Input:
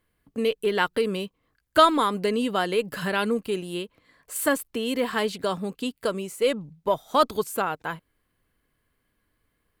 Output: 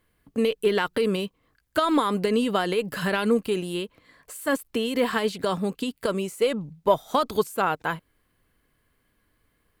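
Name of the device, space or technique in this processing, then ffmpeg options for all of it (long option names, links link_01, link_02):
de-esser from a sidechain: -filter_complex "[0:a]asplit=2[link_01][link_02];[link_02]highpass=5200,apad=whole_len=432215[link_03];[link_01][link_03]sidechaincompress=threshold=-43dB:ratio=5:attack=4.4:release=51,volume=4dB"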